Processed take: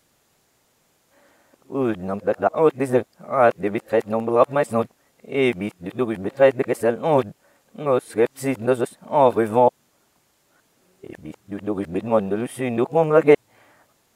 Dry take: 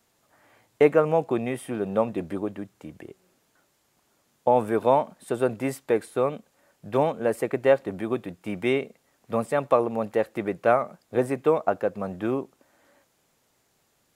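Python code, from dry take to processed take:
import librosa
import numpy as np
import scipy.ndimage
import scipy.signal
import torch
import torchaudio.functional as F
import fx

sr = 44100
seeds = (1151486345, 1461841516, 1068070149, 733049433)

y = x[::-1].copy()
y = y * 10.0 ** (4.5 / 20.0)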